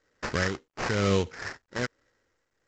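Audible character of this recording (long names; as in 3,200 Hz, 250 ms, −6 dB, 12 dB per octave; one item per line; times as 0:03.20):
aliases and images of a low sample rate 3,500 Hz, jitter 20%
tremolo triangle 1.1 Hz, depth 95%
mu-law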